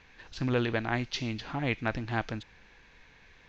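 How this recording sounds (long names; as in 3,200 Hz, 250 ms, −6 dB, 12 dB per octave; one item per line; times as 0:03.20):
background noise floor −59 dBFS
spectral slope −4.5 dB per octave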